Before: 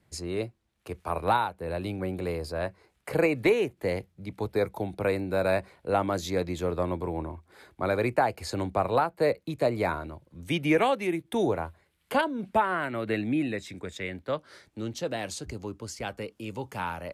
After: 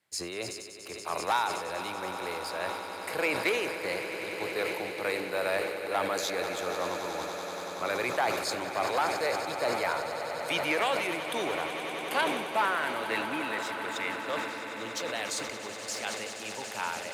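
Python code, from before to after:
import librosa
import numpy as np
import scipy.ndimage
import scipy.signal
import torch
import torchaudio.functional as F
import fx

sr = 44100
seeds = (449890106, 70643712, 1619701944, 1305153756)

y = fx.leveller(x, sr, passes=1)
y = fx.highpass(y, sr, hz=1500.0, slope=6)
y = fx.echo_swell(y, sr, ms=95, loudest=8, wet_db=-14.0)
y = fx.sustainer(y, sr, db_per_s=43.0)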